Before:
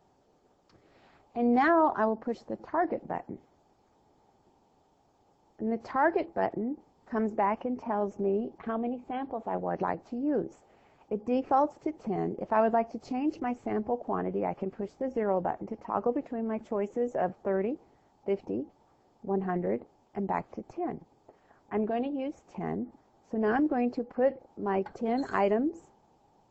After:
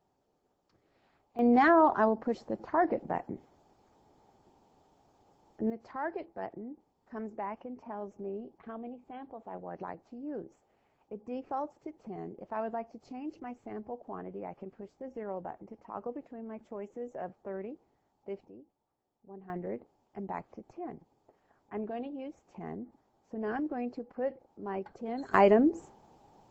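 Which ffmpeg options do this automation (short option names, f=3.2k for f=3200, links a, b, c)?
-af "asetnsamples=n=441:p=0,asendcmd='1.39 volume volume 1dB;5.7 volume volume -10.5dB;18.47 volume volume -19dB;19.5 volume volume -7.5dB;25.34 volume volume 4.5dB',volume=-9.5dB"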